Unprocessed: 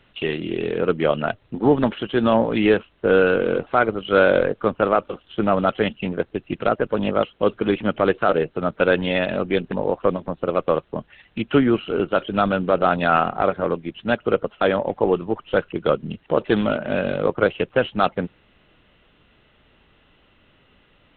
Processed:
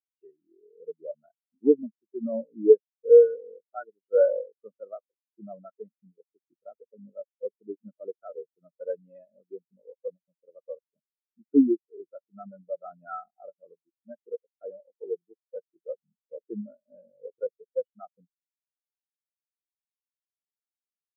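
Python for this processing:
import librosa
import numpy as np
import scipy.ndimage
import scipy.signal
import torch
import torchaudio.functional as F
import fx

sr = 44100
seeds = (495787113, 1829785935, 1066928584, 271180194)

y = fx.spectral_expand(x, sr, expansion=4.0)
y = F.gain(torch.from_numpy(y), -3.5).numpy()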